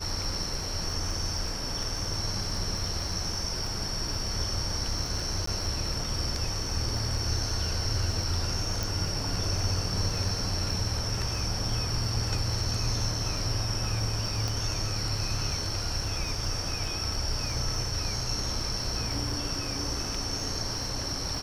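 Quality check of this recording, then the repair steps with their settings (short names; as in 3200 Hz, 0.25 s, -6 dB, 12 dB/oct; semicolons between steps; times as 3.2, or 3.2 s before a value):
crackle 47/s -37 dBFS
5.46–5.47 gap 14 ms
8.83 pop
14.48 pop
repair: de-click; interpolate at 5.46, 14 ms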